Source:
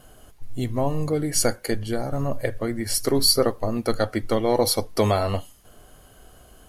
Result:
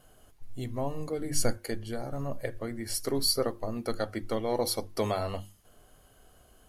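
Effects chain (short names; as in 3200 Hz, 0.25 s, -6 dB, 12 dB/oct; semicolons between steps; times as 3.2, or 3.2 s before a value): notches 50/100/150/200/250/300/350 Hz; 1.18–1.58 low shelf 180 Hz +10 dB; gain -8.5 dB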